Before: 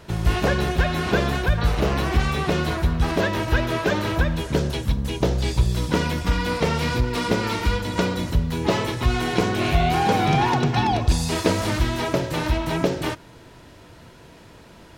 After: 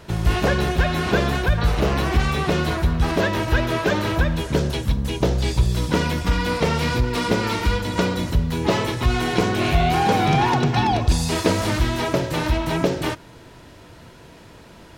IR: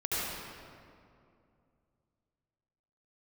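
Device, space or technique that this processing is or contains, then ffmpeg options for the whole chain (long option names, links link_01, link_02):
parallel distortion: -filter_complex "[0:a]asplit=2[link_01][link_02];[link_02]asoftclip=type=hard:threshold=-18.5dB,volume=-13dB[link_03];[link_01][link_03]amix=inputs=2:normalize=0"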